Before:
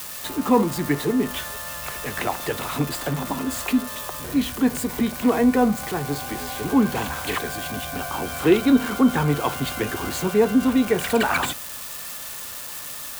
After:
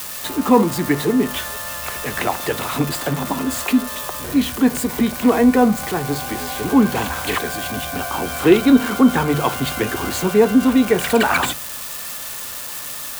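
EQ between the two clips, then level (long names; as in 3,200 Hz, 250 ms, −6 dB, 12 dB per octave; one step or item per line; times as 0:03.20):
mains-hum notches 50/100/150 Hz
+4.5 dB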